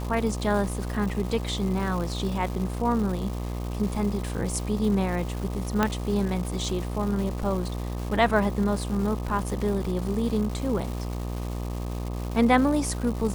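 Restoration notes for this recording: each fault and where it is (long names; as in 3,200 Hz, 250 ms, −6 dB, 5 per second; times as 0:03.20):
mains buzz 60 Hz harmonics 21 −31 dBFS
surface crackle 500 per second −33 dBFS
0:05.83: click −8 dBFS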